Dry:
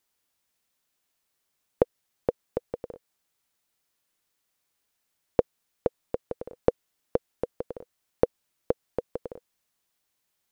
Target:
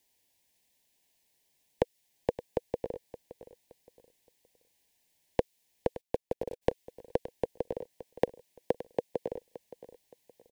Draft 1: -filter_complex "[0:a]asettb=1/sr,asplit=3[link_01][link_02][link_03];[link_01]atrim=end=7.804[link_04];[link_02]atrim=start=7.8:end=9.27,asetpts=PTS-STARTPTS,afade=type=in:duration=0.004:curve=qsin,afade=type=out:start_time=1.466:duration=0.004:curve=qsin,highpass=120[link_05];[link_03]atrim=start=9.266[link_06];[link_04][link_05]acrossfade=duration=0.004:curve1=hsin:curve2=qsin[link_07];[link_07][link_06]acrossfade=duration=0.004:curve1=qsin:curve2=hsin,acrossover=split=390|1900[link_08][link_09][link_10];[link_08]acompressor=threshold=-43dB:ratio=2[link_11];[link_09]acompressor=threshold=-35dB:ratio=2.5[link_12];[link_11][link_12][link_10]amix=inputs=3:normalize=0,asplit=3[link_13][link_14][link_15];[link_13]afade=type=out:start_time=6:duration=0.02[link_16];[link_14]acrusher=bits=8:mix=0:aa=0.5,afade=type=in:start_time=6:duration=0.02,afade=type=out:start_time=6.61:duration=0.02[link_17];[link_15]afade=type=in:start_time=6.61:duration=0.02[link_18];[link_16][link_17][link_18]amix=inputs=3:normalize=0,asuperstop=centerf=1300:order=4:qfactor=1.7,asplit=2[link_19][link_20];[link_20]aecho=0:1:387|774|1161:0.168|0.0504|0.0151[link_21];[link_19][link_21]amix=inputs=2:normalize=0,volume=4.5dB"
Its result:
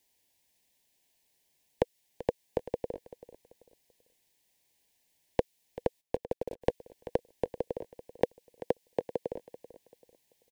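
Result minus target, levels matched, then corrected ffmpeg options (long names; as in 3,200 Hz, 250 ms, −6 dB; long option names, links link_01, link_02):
echo 183 ms early
-filter_complex "[0:a]asettb=1/sr,asplit=3[link_01][link_02][link_03];[link_01]atrim=end=7.804[link_04];[link_02]atrim=start=7.8:end=9.27,asetpts=PTS-STARTPTS,afade=type=in:duration=0.004:curve=qsin,afade=type=out:start_time=1.466:duration=0.004:curve=qsin,highpass=120[link_05];[link_03]atrim=start=9.266[link_06];[link_04][link_05]acrossfade=duration=0.004:curve1=hsin:curve2=qsin[link_07];[link_07][link_06]acrossfade=duration=0.004:curve1=qsin:curve2=hsin,acrossover=split=390|1900[link_08][link_09][link_10];[link_08]acompressor=threshold=-43dB:ratio=2[link_11];[link_09]acompressor=threshold=-35dB:ratio=2.5[link_12];[link_11][link_12][link_10]amix=inputs=3:normalize=0,asplit=3[link_13][link_14][link_15];[link_13]afade=type=out:start_time=6:duration=0.02[link_16];[link_14]acrusher=bits=8:mix=0:aa=0.5,afade=type=in:start_time=6:duration=0.02,afade=type=out:start_time=6.61:duration=0.02[link_17];[link_15]afade=type=in:start_time=6.61:duration=0.02[link_18];[link_16][link_17][link_18]amix=inputs=3:normalize=0,asuperstop=centerf=1300:order=4:qfactor=1.7,asplit=2[link_19][link_20];[link_20]aecho=0:1:570|1140|1710:0.168|0.0504|0.0151[link_21];[link_19][link_21]amix=inputs=2:normalize=0,volume=4.5dB"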